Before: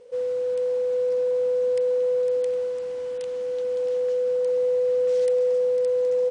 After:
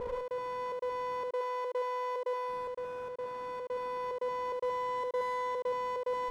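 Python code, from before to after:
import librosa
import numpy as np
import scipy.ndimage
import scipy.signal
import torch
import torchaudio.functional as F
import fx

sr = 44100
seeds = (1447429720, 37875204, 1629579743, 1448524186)

p1 = scipy.signal.sosfilt(scipy.signal.butter(6, 1400.0, 'lowpass', fs=sr, output='sos'), x)
p2 = fx.peak_eq(p1, sr, hz=460.0, db=-7.0, octaves=2.5)
p3 = fx.over_compress(p2, sr, threshold_db=-48.0, ratio=-0.5)
p4 = p2 + F.gain(torch.from_numpy(p3), -2.0).numpy()
p5 = fx.clip_asym(p4, sr, top_db=-47.0, bottom_db=-25.5)
p6 = fx.step_gate(p5, sr, bpm=146, pattern='xx.xxxx.xxxx.x', floor_db=-60.0, edge_ms=4.5)
p7 = fx.brickwall_highpass(p6, sr, low_hz=360.0, at=(1.25, 2.49))
p8 = p7 + fx.echo_single(p7, sr, ms=71, db=-3.5, dry=0)
y = F.gain(torch.from_numpy(p8), 2.0).numpy()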